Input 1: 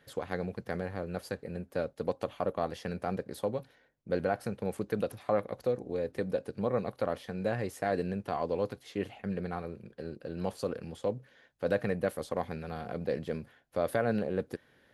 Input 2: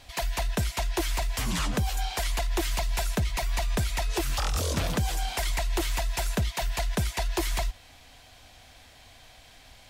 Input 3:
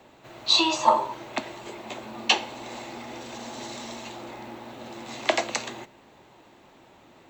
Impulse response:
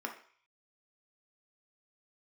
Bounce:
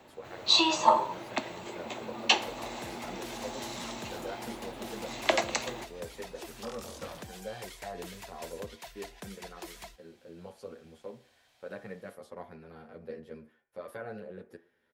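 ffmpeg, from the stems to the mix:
-filter_complex "[0:a]asplit=2[a][b];[b]adelay=10,afreqshift=-0.46[c];[a][c]amix=inputs=2:normalize=1,volume=-11.5dB,asplit=2[d][e];[e]volume=-4dB[f];[1:a]highpass=f=230:p=1,adelay=2250,volume=-14.5dB[g];[2:a]volume=-2.5dB[h];[3:a]atrim=start_sample=2205[i];[f][i]afir=irnorm=-1:irlink=0[j];[d][g][h][j]amix=inputs=4:normalize=0"

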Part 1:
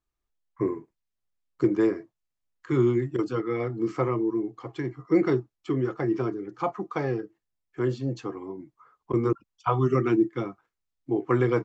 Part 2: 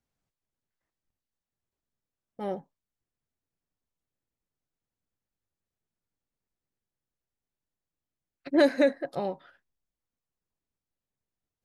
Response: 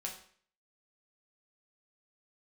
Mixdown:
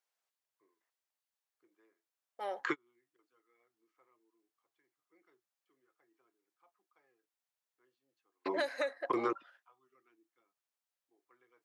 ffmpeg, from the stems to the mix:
-filter_complex "[0:a]agate=range=-16dB:threshold=-54dB:ratio=16:detection=peak,equalizer=f=2.2k:w=0.37:g=12.5,volume=3dB[a];[1:a]highpass=670,volume=0.5dB,asplit=2[b][c];[c]apad=whole_len=513333[d];[a][d]sidechaingate=range=-53dB:threshold=-58dB:ratio=16:detection=peak[e];[e][b]amix=inputs=2:normalize=0,highpass=370,acompressor=threshold=-32dB:ratio=4"

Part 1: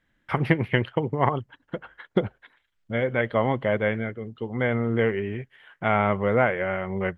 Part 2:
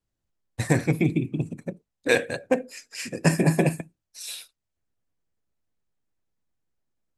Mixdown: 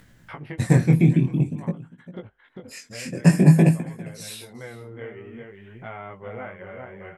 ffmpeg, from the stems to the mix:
-filter_complex "[0:a]volume=-12.5dB,asplit=2[a][b];[b]volume=-6.5dB[c];[1:a]equalizer=f=160:t=o:w=1.3:g=11,volume=1dB,asplit=3[d][e][f];[d]atrim=end=1.86,asetpts=PTS-STARTPTS,afade=t=out:st=1.856:d=0.004:c=hsin[g];[e]atrim=start=1.86:end=2.65,asetpts=PTS-STARTPTS,volume=0[h];[f]atrim=start=2.65,asetpts=PTS-STARTPTS,afade=t=in:d=0.004:c=hsin[i];[g][h][i]concat=n=3:v=0:a=1,asplit=3[j][k][l];[k]volume=-19.5dB[m];[l]apad=whole_len=316608[n];[a][n]sidechaincompress=threshold=-31dB:ratio=8:attack=16:release=198[o];[c][m]amix=inputs=2:normalize=0,aecho=0:1:400:1[p];[o][j][p]amix=inputs=3:normalize=0,acompressor=mode=upward:threshold=-30dB:ratio=2.5,flanger=delay=16.5:depth=7.6:speed=0.5"

